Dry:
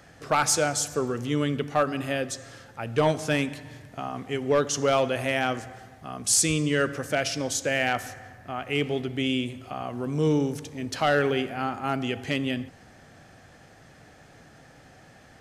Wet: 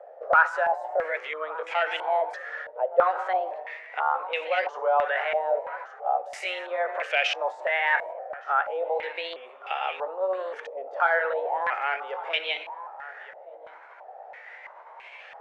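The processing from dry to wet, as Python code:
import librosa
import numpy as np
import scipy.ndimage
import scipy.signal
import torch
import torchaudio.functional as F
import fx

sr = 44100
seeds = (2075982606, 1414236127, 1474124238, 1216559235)

p1 = fx.pitch_ramps(x, sr, semitones=4.5, every_ms=1170)
p2 = fx.over_compress(p1, sr, threshold_db=-33.0, ratio=-1.0)
p3 = p1 + (p2 * 10.0 ** (-0.5 / 20.0))
p4 = scipy.signal.sosfilt(scipy.signal.butter(8, 480.0, 'highpass', fs=sr, output='sos'), p3)
p5 = p4 + fx.echo_single(p4, sr, ms=1167, db=-17.0, dry=0)
p6 = fx.filter_held_lowpass(p5, sr, hz=3.0, low_hz=610.0, high_hz=2600.0)
y = p6 * 10.0 ** (-3.5 / 20.0)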